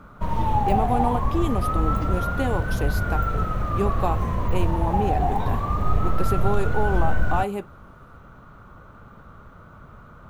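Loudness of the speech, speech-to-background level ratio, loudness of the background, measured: −29.0 LKFS, −4.0 dB, −25.0 LKFS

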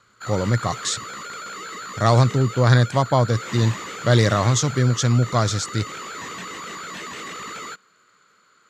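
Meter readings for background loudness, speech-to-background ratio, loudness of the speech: −33.0 LKFS, 13.0 dB, −20.0 LKFS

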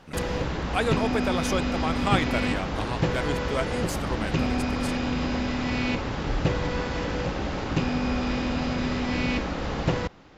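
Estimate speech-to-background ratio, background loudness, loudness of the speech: −3.0 dB, −27.5 LKFS, −30.5 LKFS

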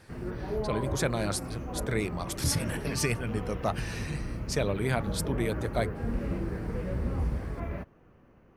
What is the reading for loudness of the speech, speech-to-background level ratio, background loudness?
−32.5 LKFS, 3.0 dB, −35.5 LKFS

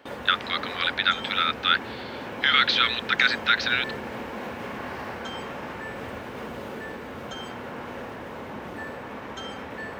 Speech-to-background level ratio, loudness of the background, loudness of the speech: 12.5 dB, −35.5 LKFS, −23.0 LKFS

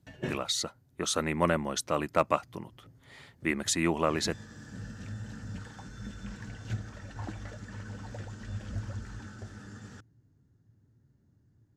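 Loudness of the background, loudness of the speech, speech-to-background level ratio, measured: −42.5 LKFS, −30.0 LKFS, 12.5 dB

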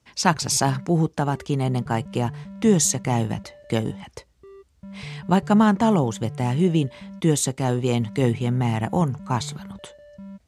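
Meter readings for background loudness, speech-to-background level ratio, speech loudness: −40.0 LKFS, 17.5 dB, −22.5 LKFS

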